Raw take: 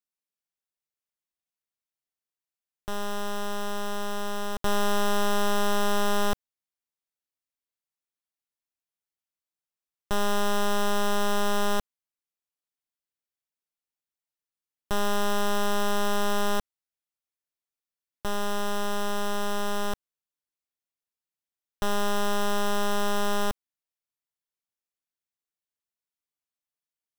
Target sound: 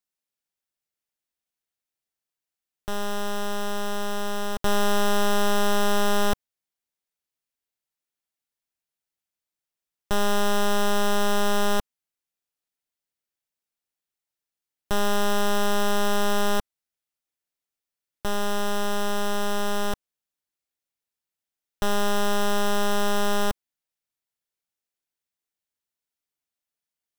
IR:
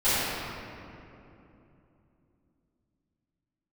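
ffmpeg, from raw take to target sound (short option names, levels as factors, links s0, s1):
-af "equalizer=f=1100:w=6.5:g=-4.5,volume=1.41"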